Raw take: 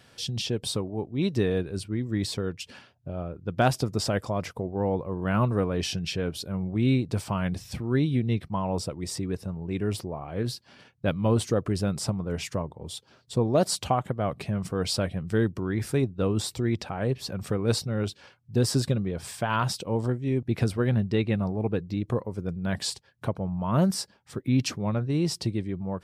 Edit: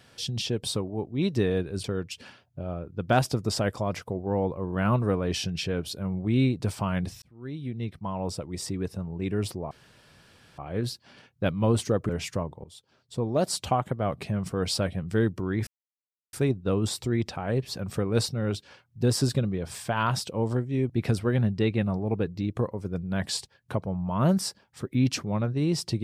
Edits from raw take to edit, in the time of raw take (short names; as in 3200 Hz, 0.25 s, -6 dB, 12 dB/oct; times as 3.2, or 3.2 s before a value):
1.84–2.33 cut
7.71–9.66 fade in equal-power
10.2 insert room tone 0.87 s
11.71–12.28 cut
12.83–13.96 fade in, from -14 dB
15.86 insert silence 0.66 s